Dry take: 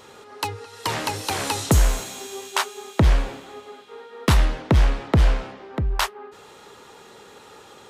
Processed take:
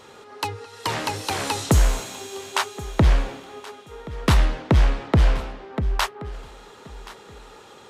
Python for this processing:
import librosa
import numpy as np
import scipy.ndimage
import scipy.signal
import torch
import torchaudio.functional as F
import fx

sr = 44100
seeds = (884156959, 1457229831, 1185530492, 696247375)

y = fx.high_shelf(x, sr, hz=9900.0, db=-6.0)
y = fx.echo_feedback(y, sr, ms=1076, feedback_pct=23, wet_db=-18.5)